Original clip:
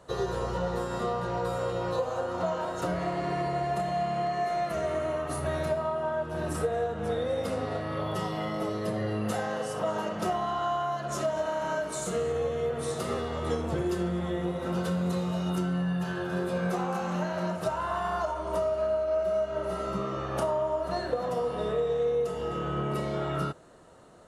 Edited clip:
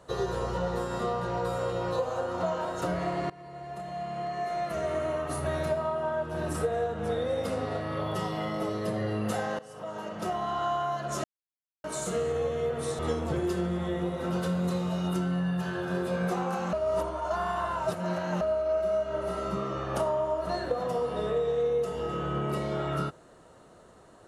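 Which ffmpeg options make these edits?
-filter_complex "[0:a]asplit=8[a][b][c][d][e][f][g][h];[a]atrim=end=3.3,asetpts=PTS-STARTPTS,afade=t=out:st=3.296:d=0.004:c=hsin:silence=0.0841395[i];[b]atrim=start=3.3:end=9.59,asetpts=PTS-STARTPTS,afade=t=in:d=1.69:silence=0.0841395,afade=t=out:st=6.286:d=0.004:c=hsin:silence=0.133352[j];[c]atrim=start=9.59:end=11.24,asetpts=PTS-STARTPTS,afade=t=in:d=1.01:silence=0.133352,afade=t=out:st=1.646:d=0.004:c=hsin[k];[d]atrim=start=11.24:end=11.84,asetpts=PTS-STARTPTS,volume=0[l];[e]atrim=start=11.84:end=12.992,asetpts=PTS-STARTPTS,afade=t=in:d=0.004:c=hsin[m];[f]atrim=start=13.408:end=17.152[n];[g]atrim=start=17.148:end=18.832,asetpts=PTS-STARTPTS,areverse[o];[h]atrim=start=18.828[p];[i][j][k][l][m]concat=n=5:v=0:a=1[q];[q][n]acrossfade=d=0.004:c1=hsin:c2=hsin[r];[r][o]acrossfade=d=0.004:c1=hsin:c2=hsin[s];[s][p]acrossfade=d=0.004:c1=hsin:c2=hsin"

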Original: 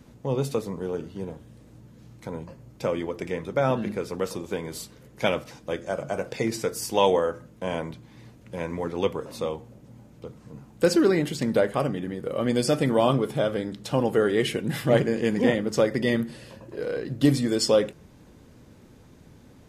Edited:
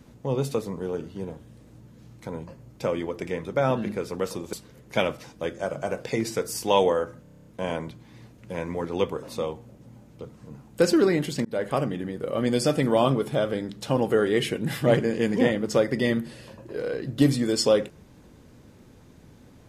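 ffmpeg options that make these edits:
-filter_complex "[0:a]asplit=11[a][b][c][d][e][f][g][h][i][j][k];[a]atrim=end=4.532[l];[b]atrim=start=4.798:end=7.522[m];[c]atrim=start=7.488:end=7.522[n];[d]atrim=start=7.488:end=7.522[o];[e]atrim=start=7.488:end=7.522[p];[f]atrim=start=7.488:end=7.522[q];[g]atrim=start=7.488:end=7.522[r];[h]atrim=start=7.488:end=7.522[s];[i]atrim=start=7.488:end=7.522[t];[j]atrim=start=7.488:end=11.48,asetpts=PTS-STARTPTS,afade=t=out:st=3.988:d=0.004:c=hsin[u];[k]atrim=start=11.48,asetpts=PTS-STARTPTS,afade=t=in:d=0.26[v];[l][m]acrossfade=d=0.004:c1=hsin:c2=hsin[w];[w][n]acrossfade=d=0.004:c1=hsin:c2=hsin[x];[x][o]acrossfade=d=0.004:c1=hsin:c2=hsin[y];[y][p]acrossfade=d=0.004:c1=hsin:c2=hsin[z];[z][q]acrossfade=d=0.004:c1=hsin:c2=hsin[aa];[aa][r]acrossfade=d=0.004:c1=hsin:c2=hsin[ab];[ab][s]acrossfade=d=0.004:c1=hsin:c2=hsin[ac];[ac][t]acrossfade=d=0.004:c1=hsin:c2=hsin[ad];[u][v]concat=n=2:v=0:a=1[ae];[ad][ae]acrossfade=d=0.004:c1=hsin:c2=hsin"

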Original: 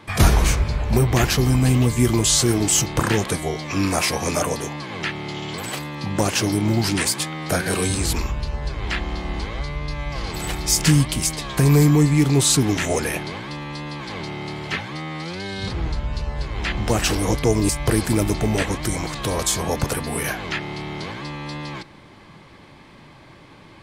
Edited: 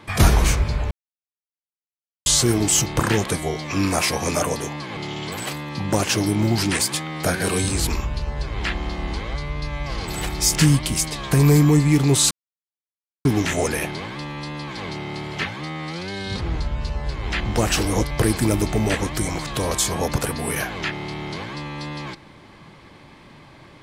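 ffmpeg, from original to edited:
-filter_complex "[0:a]asplit=6[a][b][c][d][e][f];[a]atrim=end=0.91,asetpts=PTS-STARTPTS,afade=t=out:st=0.906:d=0.004:c=hsin[g];[b]atrim=start=0.91:end=2.26,asetpts=PTS-STARTPTS,volume=0[h];[c]atrim=start=2.26:end=4.972,asetpts=PTS-STARTPTS,afade=t=in:d=0.004:c=hsin[i];[d]atrim=start=5.228:end=12.57,asetpts=PTS-STARTPTS,afade=t=out:st=7.338:d=0.004:c=hsin,apad=pad_dur=0.94[j];[e]atrim=start=12.57:end=17.432,asetpts=PTS-STARTPTS,afade=t=in:d=0.004:c=hsin[k];[f]atrim=start=17.788[l];[g][h][i]concat=n=3:v=0:a=1[m];[j][k]concat=n=2:v=0:a=1[n];[m][n]acrossfade=d=0.004:c1=hsin:c2=hsin[o];[o][l]acrossfade=d=0.004:c1=hsin:c2=hsin"

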